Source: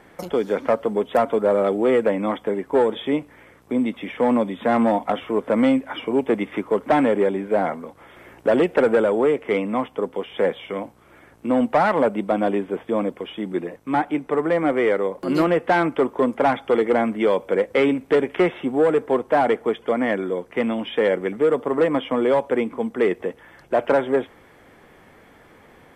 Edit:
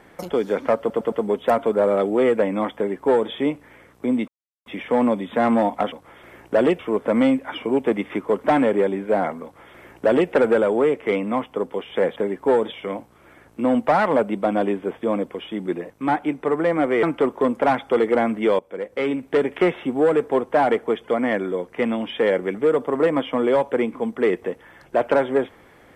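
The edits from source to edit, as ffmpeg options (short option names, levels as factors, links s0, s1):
-filter_complex "[0:a]asplit=11[s0][s1][s2][s3][s4][s5][s6][s7][s8][s9][s10];[s0]atrim=end=0.902[s11];[s1]atrim=start=0.788:end=0.902[s12];[s2]atrim=start=0.788:end=0.902[s13];[s3]atrim=start=0.788:end=3.95,asetpts=PTS-STARTPTS,afade=t=out:st=3.158:d=0.004:c=hsin,apad=pad_dur=0.38[s14];[s4]atrim=start=3.95:end=5.212,asetpts=PTS-STARTPTS,afade=t=in:d=0.004:c=hsin[s15];[s5]atrim=start=7.848:end=8.722[s16];[s6]atrim=start=5.208:end=10.582[s17];[s7]atrim=start=2.428:end=2.992[s18];[s8]atrim=start=10.578:end=14.892[s19];[s9]atrim=start=15.808:end=17.37,asetpts=PTS-STARTPTS,afade=t=out:st=1.558:d=0.004:c=hsin:silence=0.149624[s20];[s10]atrim=start=17.37,asetpts=PTS-STARTPTS,afade=t=in:d=0.94:silence=0.149624[s21];[s11][s12]acrossfade=d=0.004:c1=hsin:c2=hsin[s22];[s22][s13]acrossfade=d=0.004:c1=hsin:c2=hsin[s23];[s14][s15]concat=n=2:v=0:a=1[s24];[s23][s24]acrossfade=d=0.004:c1=hsin:c2=hsin[s25];[s25][s16]acrossfade=d=0.004:c1=hsin:c2=hsin[s26];[s26][s17]acrossfade=d=0.004:c1=hsin:c2=hsin[s27];[s27][s18]acrossfade=d=0.004:c1=hsin:c2=hsin[s28];[s28][s19]acrossfade=d=0.004:c1=hsin:c2=hsin[s29];[s20][s21]concat=n=2:v=0:a=1[s30];[s29][s30]acrossfade=d=0.004:c1=hsin:c2=hsin"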